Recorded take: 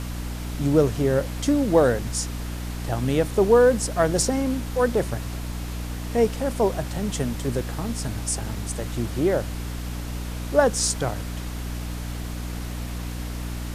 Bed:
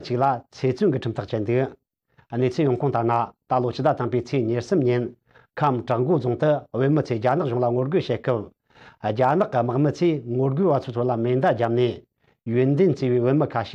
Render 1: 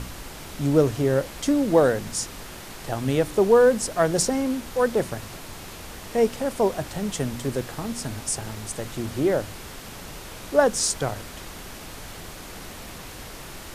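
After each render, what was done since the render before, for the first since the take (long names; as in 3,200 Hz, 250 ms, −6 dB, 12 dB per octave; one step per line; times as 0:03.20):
hum removal 60 Hz, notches 5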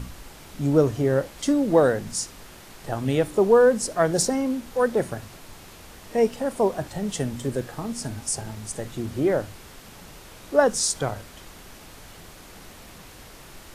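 noise reduction from a noise print 6 dB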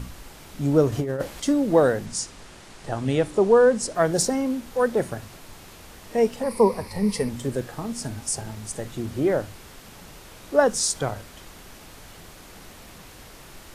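0:00.92–0:01.40: compressor whose output falls as the input rises −24 dBFS, ratio −0.5
0:02.06–0:03.95: low-pass filter 9,900 Hz 24 dB per octave
0:06.43–0:07.29: EQ curve with evenly spaced ripples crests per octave 0.89, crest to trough 14 dB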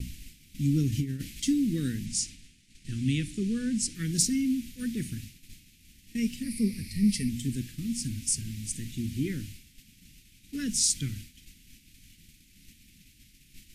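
Chebyshev band-stop filter 260–2,300 Hz, order 3
downward expander −38 dBFS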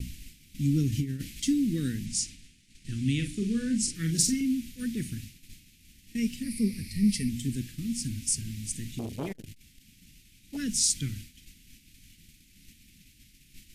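0:03.14–0:04.41: double-tracking delay 43 ms −6 dB
0:08.99–0:10.57: saturating transformer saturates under 610 Hz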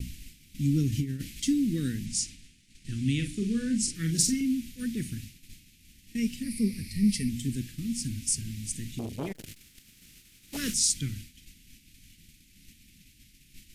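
0:09.34–0:10.73: compressing power law on the bin magnitudes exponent 0.65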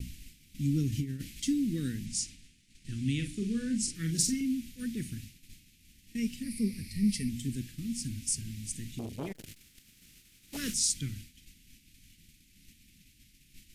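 level −3.5 dB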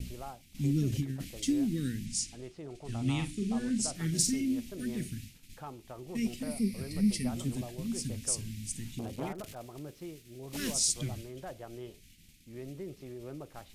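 mix in bed −24 dB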